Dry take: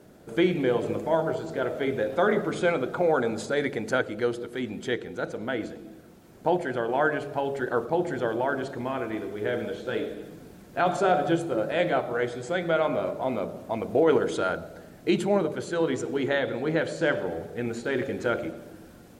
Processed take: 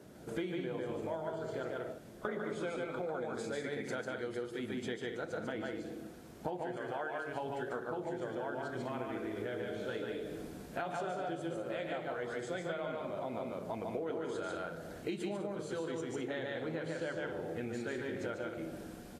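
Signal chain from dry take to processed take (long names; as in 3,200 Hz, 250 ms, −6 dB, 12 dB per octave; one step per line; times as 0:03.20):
0:01.78–0:02.25: fill with room tone
0:06.77–0:07.28: low-shelf EQ 320 Hz −11 dB
loudspeakers that aren't time-aligned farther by 50 metres −2 dB, 69 metres −10 dB
downward compressor 8 to 1, threshold −33 dBFS, peak gain reduction 17.5 dB
level −2.5 dB
Ogg Vorbis 32 kbit/s 44,100 Hz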